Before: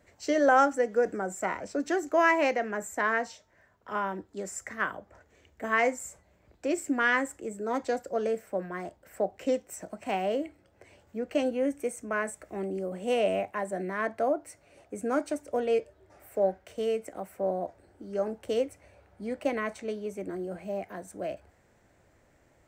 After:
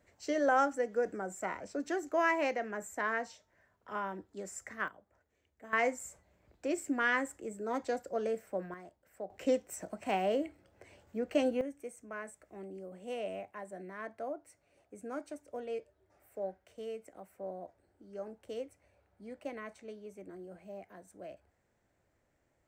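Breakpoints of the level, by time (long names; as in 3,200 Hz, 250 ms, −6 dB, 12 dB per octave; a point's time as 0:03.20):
−6.5 dB
from 0:04.88 −16.5 dB
from 0:05.73 −5 dB
from 0:08.74 −13.5 dB
from 0:09.30 −2 dB
from 0:11.61 −12.5 dB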